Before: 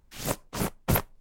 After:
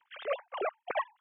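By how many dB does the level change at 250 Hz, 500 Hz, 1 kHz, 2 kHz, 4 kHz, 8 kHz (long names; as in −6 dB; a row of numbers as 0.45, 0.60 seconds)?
−19.0 dB, 0.0 dB, −0.5 dB, −2.0 dB, −8.5 dB, below −40 dB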